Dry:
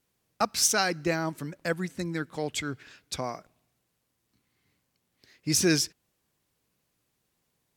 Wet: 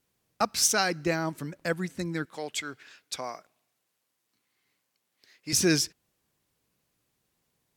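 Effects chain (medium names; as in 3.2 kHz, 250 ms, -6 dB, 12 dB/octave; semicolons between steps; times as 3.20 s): 2.25–5.53 s: high-pass 610 Hz 6 dB/octave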